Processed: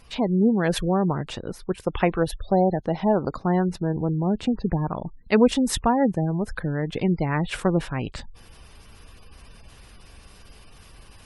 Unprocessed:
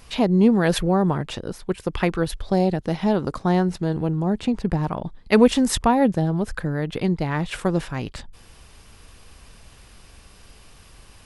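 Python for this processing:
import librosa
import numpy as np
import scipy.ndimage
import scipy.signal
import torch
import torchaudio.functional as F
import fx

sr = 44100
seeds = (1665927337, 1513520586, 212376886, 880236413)

y = fx.spec_gate(x, sr, threshold_db=-30, keep='strong')
y = fx.dynamic_eq(y, sr, hz=700.0, q=1.3, threshold_db=-36.0, ratio=4.0, max_db=6, at=(1.79, 3.29))
y = fx.rider(y, sr, range_db=3, speed_s=2.0)
y = F.gain(torch.from_numpy(y), -2.5).numpy()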